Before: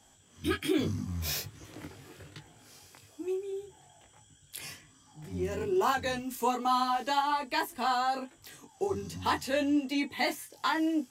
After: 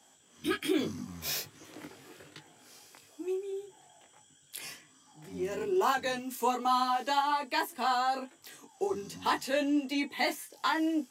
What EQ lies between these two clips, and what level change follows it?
HPF 220 Hz 12 dB/oct; 0.0 dB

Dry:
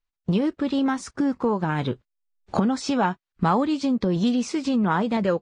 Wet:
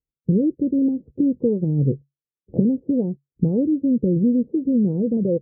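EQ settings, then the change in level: HPF 57 Hz; Chebyshev low-pass 510 Hz, order 5; bell 140 Hz +10 dB 0.21 oct; +4.0 dB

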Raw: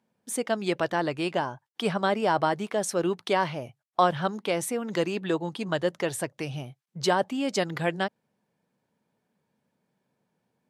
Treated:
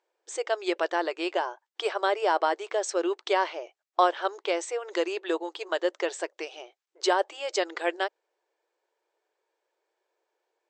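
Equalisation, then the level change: brick-wall FIR band-pass 320–8300 Hz; 0.0 dB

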